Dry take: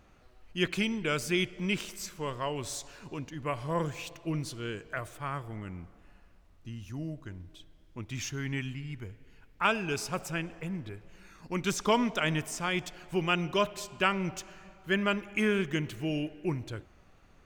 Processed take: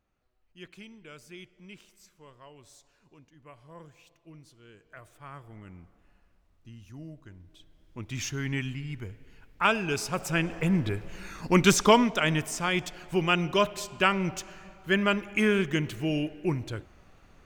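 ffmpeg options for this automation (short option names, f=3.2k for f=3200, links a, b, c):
-af "volume=12dB,afade=t=in:st=4.66:d=1.06:silence=0.266073,afade=t=in:st=7.41:d=0.84:silence=0.354813,afade=t=in:st=10.17:d=0.61:silence=0.354813,afade=t=out:st=11.55:d=0.52:silence=0.375837"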